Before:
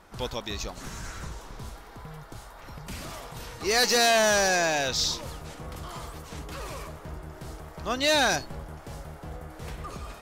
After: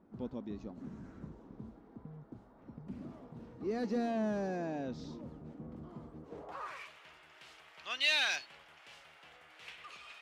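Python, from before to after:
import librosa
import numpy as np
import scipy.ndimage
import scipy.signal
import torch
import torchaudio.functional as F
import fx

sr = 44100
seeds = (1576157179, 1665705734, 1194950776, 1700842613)

p1 = fx.filter_sweep_bandpass(x, sr, from_hz=240.0, to_hz=2700.0, start_s=6.19, end_s=6.86, q=2.6)
p2 = 10.0 ** (-36.0 / 20.0) * np.tanh(p1 / 10.0 ** (-36.0 / 20.0))
y = p1 + (p2 * librosa.db_to_amplitude(-10.0))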